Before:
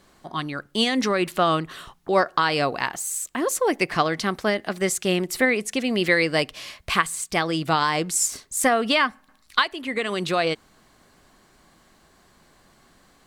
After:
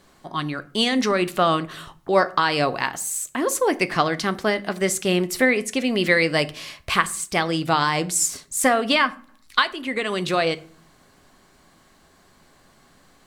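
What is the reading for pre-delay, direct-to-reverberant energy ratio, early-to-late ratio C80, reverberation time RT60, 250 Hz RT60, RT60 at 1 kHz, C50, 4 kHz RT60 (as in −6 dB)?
7 ms, 12.0 dB, 24.0 dB, 0.45 s, 0.65 s, 0.45 s, 20.5 dB, 0.30 s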